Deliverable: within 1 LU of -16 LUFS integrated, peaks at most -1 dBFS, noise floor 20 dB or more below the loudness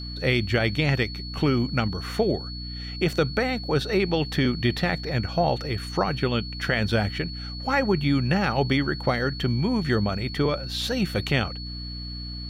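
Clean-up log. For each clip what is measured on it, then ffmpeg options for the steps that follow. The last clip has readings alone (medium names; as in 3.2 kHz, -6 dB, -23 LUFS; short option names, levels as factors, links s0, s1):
hum 60 Hz; highest harmonic 300 Hz; hum level -33 dBFS; steady tone 4.4 kHz; tone level -37 dBFS; loudness -25.0 LUFS; peak level -8.5 dBFS; loudness target -16.0 LUFS
-> -af "bandreject=f=60:t=h:w=4,bandreject=f=120:t=h:w=4,bandreject=f=180:t=h:w=4,bandreject=f=240:t=h:w=4,bandreject=f=300:t=h:w=4"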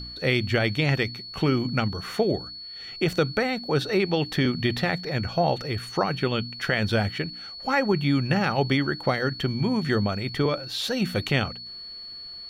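hum not found; steady tone 4.4 kHz; tone level -37 dBFS
-> -af "bandreject=f=4400:w=30"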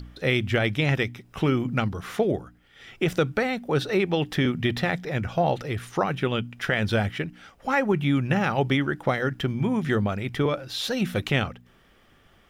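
steady tone not found; loudness -25.5 LUFS; peak level -9.0 dBFS; loudness target -16.0 LUFS
-> -af "volume=2.99,alimiter=limit=0.891:level=0:latency=1"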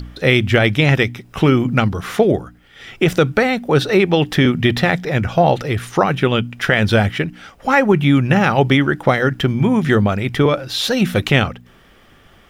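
loudness -16.0 LUFS; peak level -1.0 dBFS; noise floor -49 dBFS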